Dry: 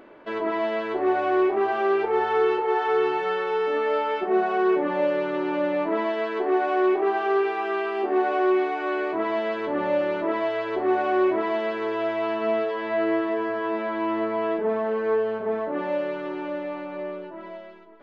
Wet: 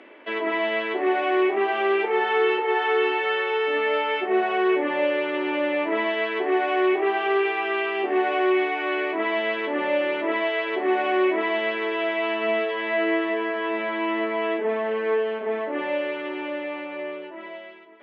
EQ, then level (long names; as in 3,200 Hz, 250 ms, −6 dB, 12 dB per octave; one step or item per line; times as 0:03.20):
Butterworth high-pass 220 Hz 48 dB per octave
high-frequency loss of the air 57 metres
flat-topped bell 2,500 Hz +10 dB 1.1 octaves
0.0 dB